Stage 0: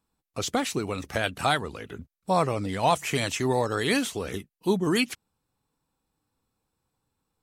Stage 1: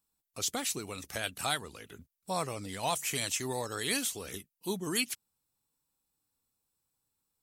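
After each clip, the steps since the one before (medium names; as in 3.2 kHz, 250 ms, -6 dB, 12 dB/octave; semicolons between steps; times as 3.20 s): pre-emphasis filter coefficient 0.8; trim +2.5 dB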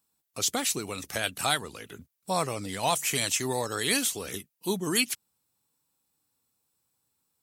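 high-pass 84 Hz; trim +5.5 dB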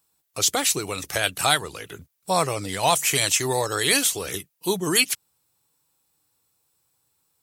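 peaking EQ 230 Hz -14 dB 0.28 oct; trim +6.5 dB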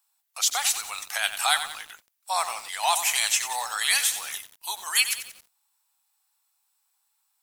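Chebyshev high-pass 770 Hz, order 4; bit-crushed delay 91 ms, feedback 55%, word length 6-bit, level -10 dB; trim -1.5 dB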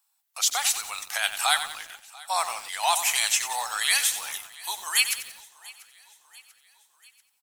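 feedback delay 690 ms, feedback 54%, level -22.5 dB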